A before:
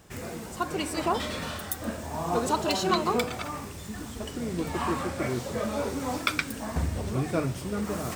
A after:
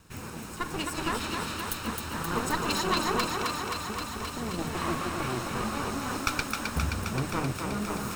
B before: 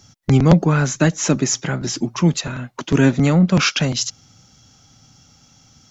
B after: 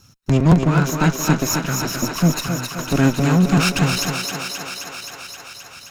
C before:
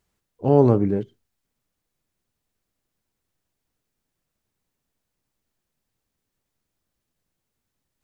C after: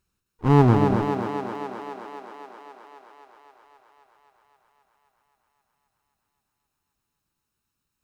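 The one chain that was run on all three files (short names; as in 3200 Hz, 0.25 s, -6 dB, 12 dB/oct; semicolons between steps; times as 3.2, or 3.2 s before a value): minimum comb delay 0.74 ms; thinning echo 0.263 s, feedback 77%, high-pass 250 Hz, level -4 dB; gain -1 dB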